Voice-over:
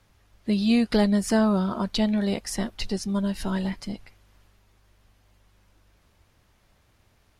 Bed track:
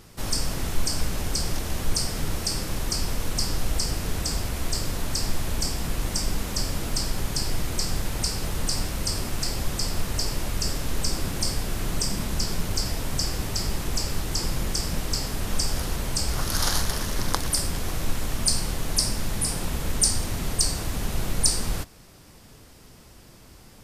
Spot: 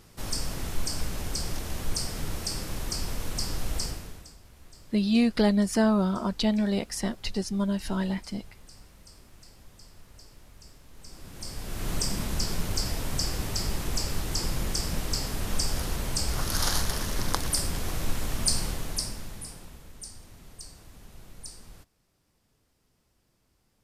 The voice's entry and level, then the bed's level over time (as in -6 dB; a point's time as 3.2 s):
4.45 s, -1.5 dB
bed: 3.85 s -5 dB
4.37 s -25 dB
10.9 s -25 dB
11.91 s -2.5 dB
18.65 s -2.5 dB
19.91 s -21.5 dB